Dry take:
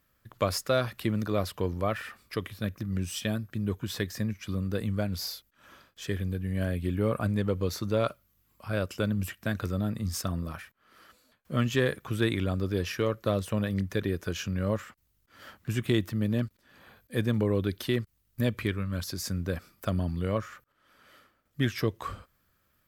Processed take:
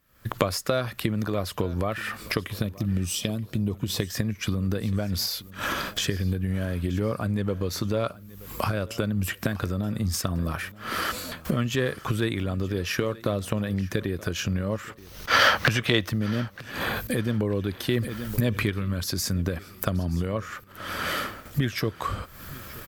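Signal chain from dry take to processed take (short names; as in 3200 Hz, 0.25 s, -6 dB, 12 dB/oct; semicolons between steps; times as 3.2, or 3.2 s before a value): recorder AGC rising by 68 dB/s; 2.63–4.02 bell 1600 Hz -13 dB 0.65 oct; 14.97–16.09 spectral gain 450–6500 Hz +10 dB; feedback echo 0.927 s, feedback 33%, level -20 dB; 17.89–18.7 fast leveller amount 50%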